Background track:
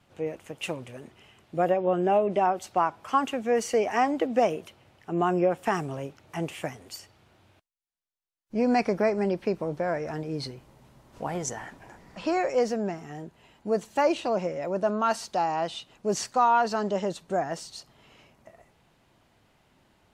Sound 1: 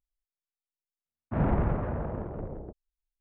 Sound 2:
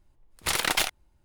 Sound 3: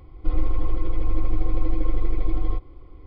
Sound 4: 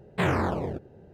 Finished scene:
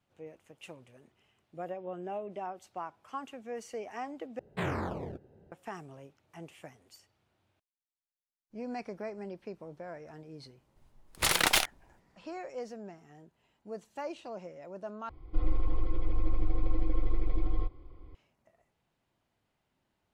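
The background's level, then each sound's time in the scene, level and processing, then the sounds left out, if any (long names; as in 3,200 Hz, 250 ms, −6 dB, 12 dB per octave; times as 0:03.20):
background track −15.5 dB
0:04.39: overwrite with 4 −8.5 dB
0:10.76: mix in 2 −0.5 dB
0:15.09: overwrite with 3 −6.5 dB
not used: 1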